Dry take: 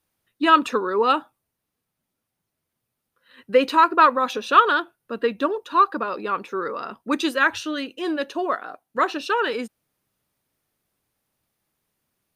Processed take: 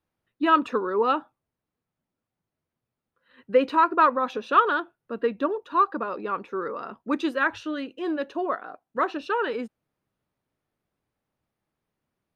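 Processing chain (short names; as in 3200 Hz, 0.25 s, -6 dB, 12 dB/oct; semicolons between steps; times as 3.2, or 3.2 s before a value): LPF 1500 Hz 6 dB/oct; gain -2 dB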